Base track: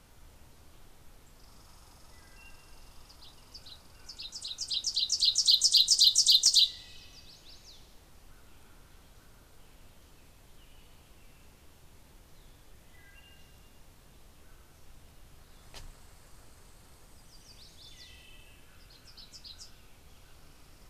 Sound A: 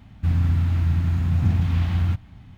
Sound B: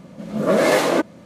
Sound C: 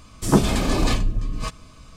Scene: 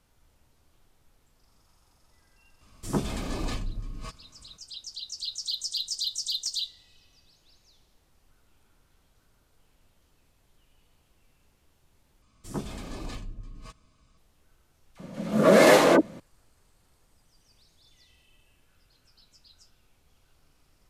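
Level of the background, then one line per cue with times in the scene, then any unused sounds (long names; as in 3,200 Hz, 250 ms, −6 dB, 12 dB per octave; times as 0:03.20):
base track −9 dB
0:02.61: mix in C −11.5 dB
0:12.22: overwrite with C −17.5 dB
0:14.95: mix in B + all-pass dispersion lows, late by 51 ms, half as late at 840 Hz
not used: A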